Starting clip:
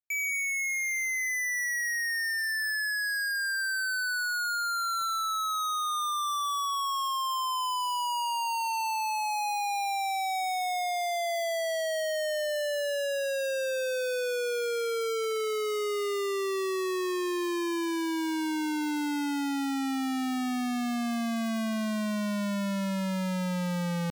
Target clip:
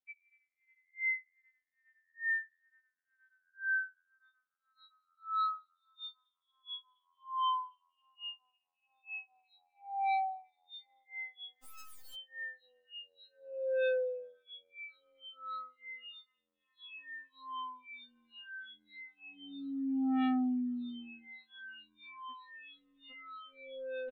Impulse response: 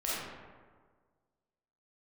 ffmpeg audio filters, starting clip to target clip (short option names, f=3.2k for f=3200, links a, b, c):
-filter_complex "[0:a]alimiter=level_in=14dB:limit=-24dB:level=0:latency=1,volume=-14dB,aresample=8000,aresample=44100,asettb=1/sr,asplit=3[a][b][c];[a]atrim=end=11.644[d];[b]atrim=start=11.64:end=12.14,asetpts=PTS-STARTPTS,afade=t=in:d=0.004:c=qsin,afade=t=out:st=0.496:d=0.004:c=qsin,acrusher=bits=8:dc=4:mix=0:aa=0.000001[e];[c]atrim=start=12.136[f];[d][e]acrossfade=d=0.004:c1=hsin:c2=qsin[g];[g][f]acrossfade=d=0.004:c1=qsin:c2=hsin,asettb=1/sr,asplit=3[h][i][j];[h]atrim=end=22.314[k];[i]atrim=start=22.31:end=23.12,asetpts=PTS-STARTPTS,afade=t=in:d=0.004:c=qsin,afade=t=out:st=0.806:d=0.004:c=qsin,equalizer=f=690:w=1:g=-7.5[l];[j]atrim=start=23.116[m];[k][l]acrossfade=d=0.004:c1=hsin:c2=qsin[n];[n][m]acrossfade=d=0.004:c1=qsin:c2=hsin,afftfilt=real='re*3.46*eq(mod(b,12),0)':imag='im*3.46*eq(mod(b,12),0)':win_size=2048:overlap=0.75"